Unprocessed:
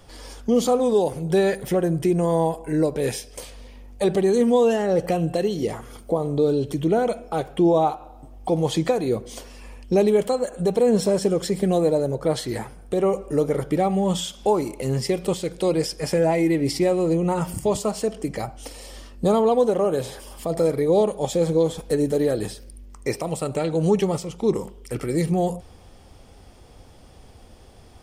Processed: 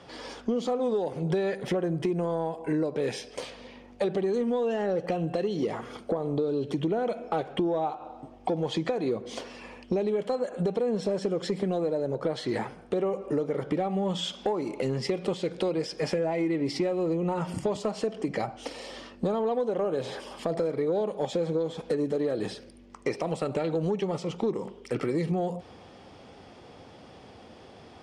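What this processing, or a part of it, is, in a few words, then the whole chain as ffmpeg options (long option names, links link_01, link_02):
AM radio: -af "highpass=160,lowpass=4200,acompressor=threshold=-27dB:ratio=10,asoftclip=type=tanh:threshold=-19.5dB,volume=3.5dB"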